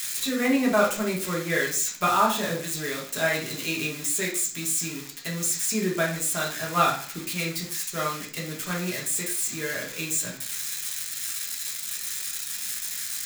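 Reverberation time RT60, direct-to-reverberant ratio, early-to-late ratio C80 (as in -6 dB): 0.45 s, -3.0 dB, 12.5 dB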